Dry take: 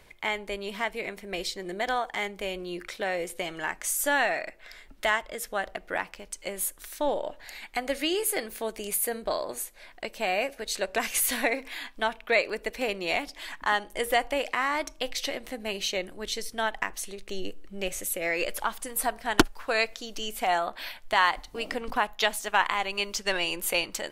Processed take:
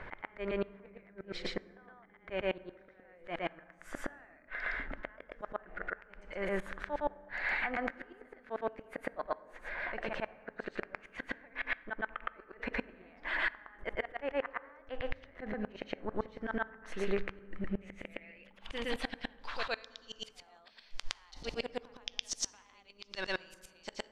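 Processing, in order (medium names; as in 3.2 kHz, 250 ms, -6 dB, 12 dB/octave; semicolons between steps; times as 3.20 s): compression 12:1, threshold -29 dBFS, peak gain reduction 16.5 dB; slow attack 114 ms; low-pass sweep 1.6 kHz -> 5.3 kHz, 17.34–20.40 s; inverted gate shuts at -29 dBFS, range -36 dB; reverse echo 114 ms -3.5 dB; reverberation RT60 2.1 s, pre-delay 3 ms, DRR 17.5 dB; trim +8 dB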